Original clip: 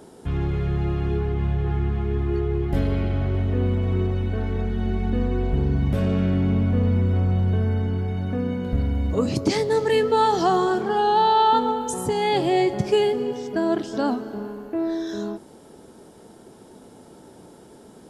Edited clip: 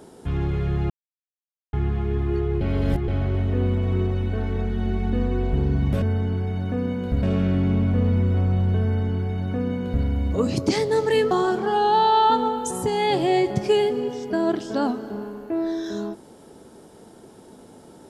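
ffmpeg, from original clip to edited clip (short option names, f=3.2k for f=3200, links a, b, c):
-filter_complex "[0:a]asplit=8[a][b][c][d][e][f][g][h];[a]atrim=end=0.9,asetpts=PTS-STARTPTS,afade=t=out:st=0.896:d=0.004:c=hsin[i];[b]atrim=start=0.9:end=1.73,asetpts=PTS-STARTPTS,volume=0[j];[c]atrim=start=1.73:end=2.612,asetpts=PTS-STARTPTS,afade=t=in:d=0.004:c=hsin[k];[d]atrim=start=2.608:end=3.082,asetpts=PTS-STARTPTS,areverse[l];[e]atrim=start=3.078:end=6.022[m];[f]atrim=start=7.628:end=8.842[n];[g]atrim=start=6.018:end=10.102[o];[h]atrim=start=10.538[p];[i][j][k]concat=n=3:v=0:a=1[q];[q][l]acrossfade=d=0.004:c1=hsin:c2=hsin[r];[r][m]acrossfade=d=0.004:c1=hsin:c2=hsin[s];[s][n]acrossfade=d=0.004:c1=hsin:c2=hsin[t];[t][o]acrossfade=d=0.004:c1=hsin:c2=hsin[u];[u][p]acrossfade=d=0.004:c1=hsin:c2=hsin"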